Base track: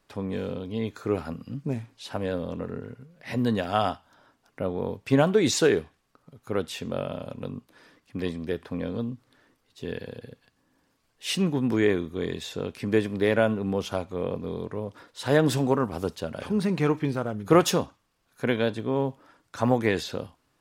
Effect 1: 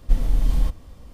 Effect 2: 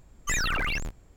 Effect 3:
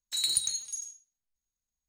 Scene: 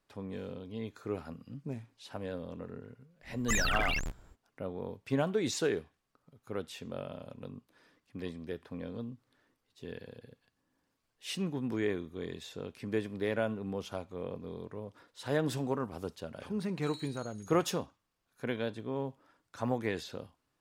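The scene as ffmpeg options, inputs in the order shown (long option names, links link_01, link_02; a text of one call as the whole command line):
ffmpeg -i bed.wav -i cue0.wav -i cue1.wav -i cue2.wav -filter_complex "[0:a]volume=-10dB[link_01];[3:a]acrossover=split=4400[link_02][link_03];[link_03]acompressor=threshold=-39dB:ratio=4:attack=1:release=60[link_04];[link_02][link_04]amix=inputs=2:normalize=0[link_05];[2:a]atrim=end=1.16,asetpts=PTS-STARTPTS,volume=-3dB,afade=type=in:duration=0.05,afade=type=out:start_time=1.11:duration=0.05,adelay=141561S[link_06];[link_05]atrim=end=1.88,asetpts=PTS-STARTPTS,volume=-17dB,afade=type=in:duration=0.004:curve=hsin,afade=type=out:start_time=1.876:duration=0.004:curve=hsin,adelay=16700[link_07];[link_01][link_06][link_07]amix=inputs=3:normalize=0" out.wav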